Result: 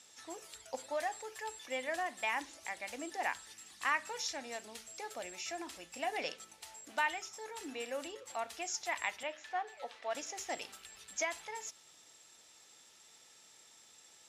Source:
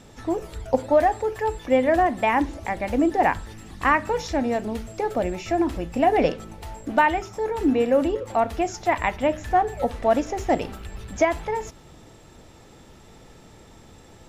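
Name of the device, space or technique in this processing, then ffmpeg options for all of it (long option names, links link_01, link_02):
piezo pickup straight into a mixer: -filter_complex "[0:a]lowpass=8600,aderivative,asettb=1/sr,asplit=3[link_01][link_02][link_03];[link_01]atrim=end=9.234[link_04];[link_02]atrim=start=9.23:end=10.15,asetpts=PTS-STARTPTS,afade=type=in:duration=0.004:curve=qsin,afade=type=out:start_time=0.916:duration=0.004:curve=qsin,acrossover=split=300 4700:gain=0.224 1 0.141[link_05][link_06][link_07];[link_05][link_06][link_07]amix=inputs=3:normalize=0[link_08];[link_03]atrim=start=10.146[link_09];[link_04][link_08]acrossfade=duration=0.004:curve1=hsin:curve2=qsin[link_10];[link_10][link_09]acrossfade=duration=0.004:curve1=qsin:curve2=hsin,volume=1.5dB"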